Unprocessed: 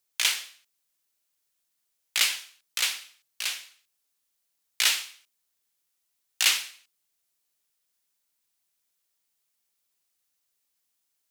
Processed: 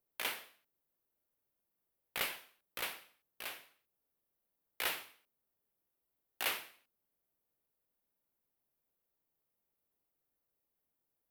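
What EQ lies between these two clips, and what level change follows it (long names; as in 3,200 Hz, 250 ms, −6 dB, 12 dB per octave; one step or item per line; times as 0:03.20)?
drawn EQ curve 520 Hz 0 dB, 6,900 Hz −28 dB, 13,000 Hz −11 dB
+4.0 dB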